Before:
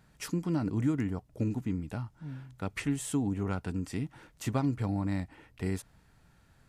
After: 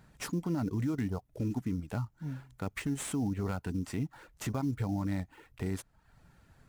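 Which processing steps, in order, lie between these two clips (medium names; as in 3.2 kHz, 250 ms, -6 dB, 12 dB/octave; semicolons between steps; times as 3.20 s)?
reverb removal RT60 0.57 s; peak limiter -28 dBFS, peak gain reduction 9.5 dB; in parallel at -6 dB: sample-rate reducer 5.8 kHz, jitter 20%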